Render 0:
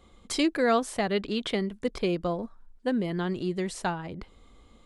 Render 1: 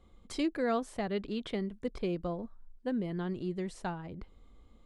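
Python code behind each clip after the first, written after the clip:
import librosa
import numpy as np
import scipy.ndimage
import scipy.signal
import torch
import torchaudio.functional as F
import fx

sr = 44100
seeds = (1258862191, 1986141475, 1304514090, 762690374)

y = fx.tilt_eq(x, sr, slope=-1.5)
y = F.gain(torch.from_numpy(y), -8.5).numpy()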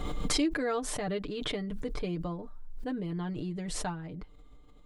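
y = x + 0.73 * np.pad(x, (int(6.7 * sr / 1000.0), 0))[:len(x)]
y = fx.pre_swell(y, sr, db_per_s=21.0)
y = F.gain(torch.from_numpy(y), -1.5).numpy()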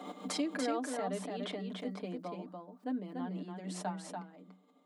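y = scipy.signal.sosfilt(scipy.signal.cheby1(6, 9, 180.0, 'highpass', fs=sr, output='sos'), x)
y = y + 10.0 ** (-4.5 / 20.0) * np.pad(y, (int(289 * sr / 1000.0), 0))[:len(y)]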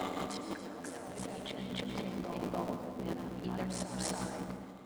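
y = fx.cycle_switch(x, sr, every=3, mode='muted')
y = fx.over_compress(y, sr, threshold_db=-49.0, ratio=-1.0)
y = fx.rev_plate(y, sr, seeds[0], rt60_s=1.5, hf_ratio=0.6, predelay_ms=95, drr_db=5.5)
y = F.gain(torch.from_numpy(y), 7.0).numpy()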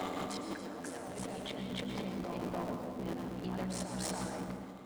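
y = 10.0 ** (-31.5 / 20.0) * np.tanh(x / 10.0 ** (-31.5 / 20.0))
y = F.gain(torch.from_numpy(y), 1.5).numpy()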